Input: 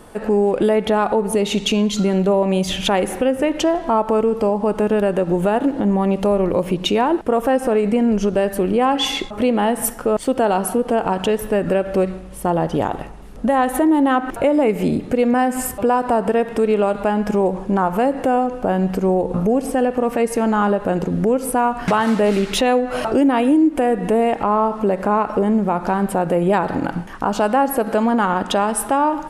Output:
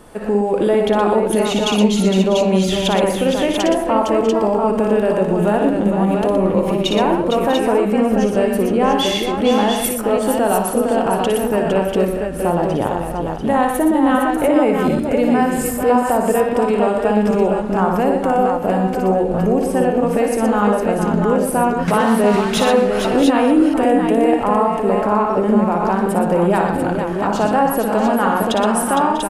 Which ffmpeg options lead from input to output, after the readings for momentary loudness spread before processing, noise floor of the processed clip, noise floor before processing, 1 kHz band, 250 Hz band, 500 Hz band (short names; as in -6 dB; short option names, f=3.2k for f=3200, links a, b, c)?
4 LU, -22 dBFS, -32 dBFS, +2.0 dB, +2.0 dB, +2.0 dB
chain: -af "aecho=1:1:58|120|459|642|650|691:0.531|0.447|0.447|0.112|0.15|0.562,volume=-1dB"